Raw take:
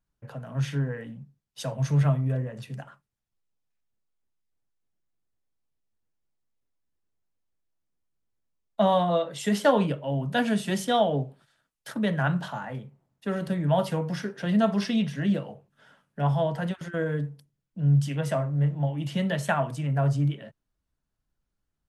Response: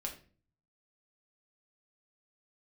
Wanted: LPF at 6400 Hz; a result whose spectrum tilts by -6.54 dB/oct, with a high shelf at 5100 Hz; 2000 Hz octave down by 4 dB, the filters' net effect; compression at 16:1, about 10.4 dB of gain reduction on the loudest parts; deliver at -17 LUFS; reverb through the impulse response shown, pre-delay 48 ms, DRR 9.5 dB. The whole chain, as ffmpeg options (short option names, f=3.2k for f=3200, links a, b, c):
-filter_complex "[0:a]lowpass=6.4k,equalizer=f=2k:t=o:g=-6.5,highshelf=f=5.1k:g=7,acompressor=threshold=-27dB:ratio=16,asplit=2[a][b];[1:a]atrim=start_sample=2205,adelay=48[c];[b][c]afir=irnorm=-1:irlink=0,volume=-9dB[d];[a][d]amix=inputs=2:normalize=0,volume=15.5dB"